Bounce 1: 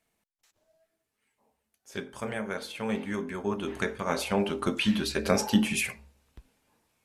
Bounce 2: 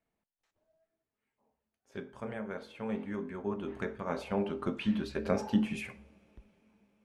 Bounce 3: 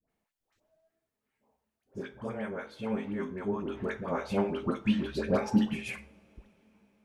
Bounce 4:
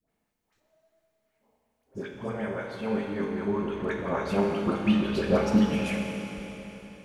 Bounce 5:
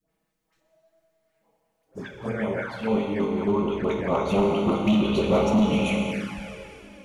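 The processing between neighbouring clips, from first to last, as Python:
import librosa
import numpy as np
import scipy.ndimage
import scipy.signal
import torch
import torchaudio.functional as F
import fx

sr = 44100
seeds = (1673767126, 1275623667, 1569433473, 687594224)

y1 = fx.lowpass(x, sr, hz=1200.0, slope=6)
y1 = fx.rev_double_slope(y1, sr, seeds[0], early_s=0.52, late_s=4.9, knee_db=-18, drr_db=17.5)
y1 = y1 * librosa.db_to_amplitude(-4.5)
y2 = fx.dispersion(y1, sr, late='highs', ms=92.0, hz=900.0)
y2 = y2 * librosa.db_to_amplitude(3.0)
y3 = fx.rev_schroeder(y2, sr, rt60_s=3.8, comb_ms=26, drr_db=1.0)
y3 = y3 * librosa.db_to_amplitude(2.5)
y4 = np.clip(y3, -10.0 ** (-21.5 / 20.0), 10.0 ** (-21.5 / 20.0))
y4 = fx.env_flanger(y4, sr, rest_ms=6.3, full_db=-27.5)
y4 = fx.dynamic_eq(y4, sr, hz=1300.0, q=0.77, threshold_db=-49.0, ratio=4.0, max_db=7)
y4 = y4 * librosa.db_to_amplitude(5.0)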